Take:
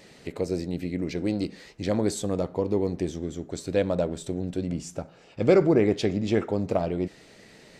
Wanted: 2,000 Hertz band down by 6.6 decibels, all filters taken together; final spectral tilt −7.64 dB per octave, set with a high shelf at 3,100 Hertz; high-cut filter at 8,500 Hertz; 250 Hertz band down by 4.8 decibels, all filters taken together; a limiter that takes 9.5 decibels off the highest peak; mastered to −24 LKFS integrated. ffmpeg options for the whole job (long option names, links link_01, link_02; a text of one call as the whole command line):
ffmpeg -i in.wav -af "lowpass=8500,equalizer=frequency=250:width_type=o:gain=-7,equalizer=frequency=2000:width_type=o:gain=-5.5,highshelf=frequency=3100:gain=-7,volume=9dB,alimiter=limit=-11dB:level=0:latency=1" out.wav